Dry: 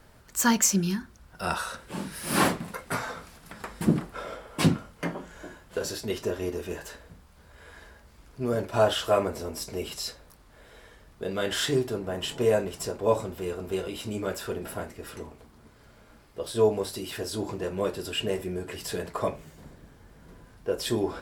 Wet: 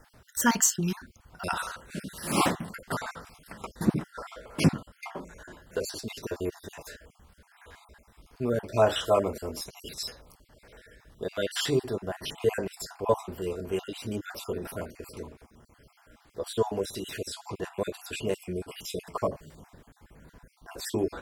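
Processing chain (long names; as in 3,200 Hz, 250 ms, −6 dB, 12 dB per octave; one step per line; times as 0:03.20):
time-frequency cells dropped at random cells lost 40%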